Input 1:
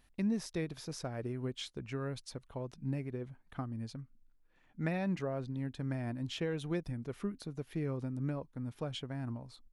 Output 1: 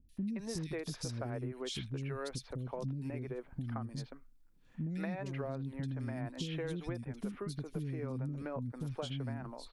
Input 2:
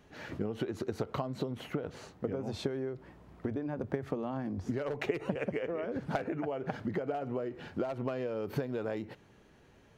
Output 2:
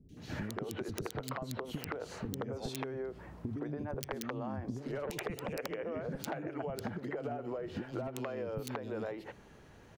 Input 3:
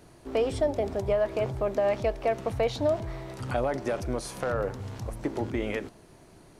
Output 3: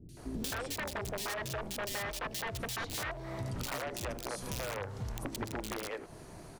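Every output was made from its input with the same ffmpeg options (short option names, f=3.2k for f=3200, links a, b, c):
-filter_complex "[0:a]aeval=exprs='(mod(11.2*val(0)+1,2)-1)/11.2':c=same,acrossover=split=320|2900[a][b][c];[c]adelay=90[d];[b]adelay=170[e];[a][e][d]amix=inputs=3:normalize=0,acompressor=threshold=-40dB:ratio=8,volume=5dB"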